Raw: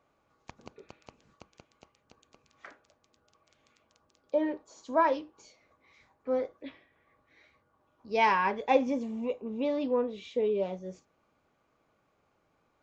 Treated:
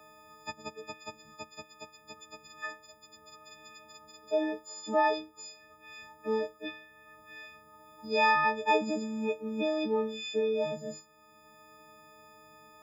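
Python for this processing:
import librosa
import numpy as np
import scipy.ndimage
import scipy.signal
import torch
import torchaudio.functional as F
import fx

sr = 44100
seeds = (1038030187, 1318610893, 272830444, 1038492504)

y = fx.freq_snap(x, sr, grid_st=6)
y = fx.band_squash(y, sr, depth_pct=40)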